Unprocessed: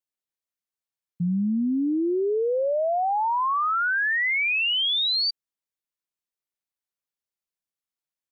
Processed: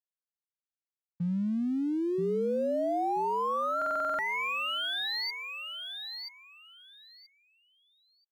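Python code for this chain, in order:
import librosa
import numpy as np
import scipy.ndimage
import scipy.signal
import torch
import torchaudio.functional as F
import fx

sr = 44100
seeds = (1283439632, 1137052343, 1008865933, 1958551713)

y = fx.rider(x, sr, range_db=10, speed_s=0.5)
y = np.sign(y) * np.maximum(np.abs(y) - 10.0 ** (-46.0 / 20.0), 0.0)
y = fx.echo_feedback(y, sr, ms=980, feedback_pct=19, wet_db=-6.5)
y = fx.buffer_glitch(y, sr, at_s=(3.77,), block=2048, repeats=8)
y = y * 10.0 ** (-7.0 / 20.0)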